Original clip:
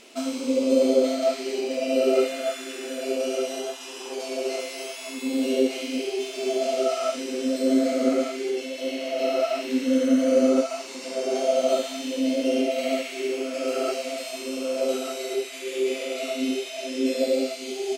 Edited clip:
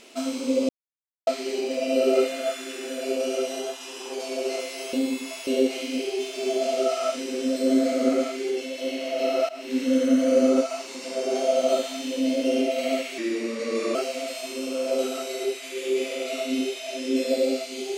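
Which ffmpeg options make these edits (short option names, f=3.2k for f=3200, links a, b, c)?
-filter_complex "[0:a]asplit=8[a][b][c][d][e][f][g][h];[a]atrim=end=0.69,asetpts=PTS-STARTPTS,afade=t=out:st=0.686:d=0.004:c=hsin[i];[b]atrim=start=0.69:end=1.27,asetpts=PTS-STARTPTS,volume=0[j];[c]atrim=start=1.27:end=4.932,asetpts=PTS-STARTPTS,afade=t=in:d=0.004:c=hsin[k];[d]atrim=start=4.928:end=5.472,asetpts=PTS-STARTPTS,areverse[l];[e]atrim=start=5.468:end=9.49,asetpts=PTS-STARTPTS,afade=t=out:st=4.018:d=0.004:c=hsin:silence=0.141254[m];[f]atrim=start=9.49:end=13.184,asetpts=PTS-STARTPTS,afade=t=in:d=0.32:silence=0.141254[n];[g]atrim=start=13.18:end=13.85,asetpts=PTS-STARTPTS,asetrate=38367,aresample=44100,atrim=end_sample=33962,asetpts=PTS-STARTPTS[o];[h]atrim=start=13.846[p];[i][j][k]concat=n=3:v=0:a=1[q];[q][l]acrossfade=d=0.004:c1=hsin:c2=hsin[r];[m][n]concat=n=2:v=0:a=1[s];[r][s]acrossfade=d=0.004:c1=hsin:c2=hsin[t];[t][o]acrossfade=d=0.004:c1=hsin:c2=hsin[u];[u][p]acrossfade=d=0.004:c1=hsin:c2=hsin"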